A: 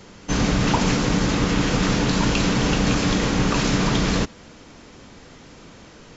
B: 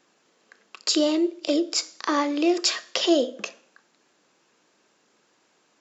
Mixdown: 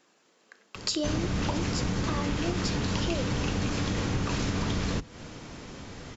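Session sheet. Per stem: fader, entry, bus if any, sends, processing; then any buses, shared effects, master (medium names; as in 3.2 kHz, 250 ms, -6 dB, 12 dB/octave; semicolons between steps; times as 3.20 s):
+1.0 dB, 0.75 s, no send, octave divider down 1 oct, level -1 dB
-0.5 dB, 0.00 s, no send, none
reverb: none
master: compression 5:1, threshold -27 dBFS, peak gain reduction 14.5 dB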